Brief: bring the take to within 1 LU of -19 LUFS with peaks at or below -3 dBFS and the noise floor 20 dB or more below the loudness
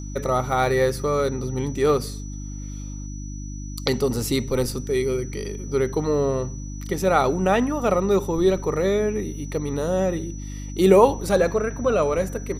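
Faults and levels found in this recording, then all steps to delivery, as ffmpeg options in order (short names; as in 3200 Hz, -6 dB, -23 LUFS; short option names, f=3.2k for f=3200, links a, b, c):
hum 50 Hz; harmonics up to 300 Hz; hum level -30 dBFS; steady tone 5900 Hz; tone level -43 dBFS; loudness -22.5 LUFS; peak -2.5 dBFS; loudness target -19.0 LUFS
-> -af "bandreject=f=50:t=h:w=4,bandreject=f=100:t=h:w=4,bandreject=f=150:t=h:w=4,bandreject=f=200:t=h:w=4,bandreject=f=250:t=h:w=4,bandreject=f=300:t=h:w=4"
-af "bandreject=f=5.9k:w=30"
-af "volume=3.5dB,alimiter=limit=-3dB:level=0:latency=1"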